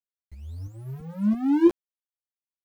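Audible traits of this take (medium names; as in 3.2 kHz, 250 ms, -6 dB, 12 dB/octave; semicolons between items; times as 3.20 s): a quantiser's noise floor 10-bit, dither none; tremolo saw up 3 Hz, depth 50%; a shimmering, thickened sound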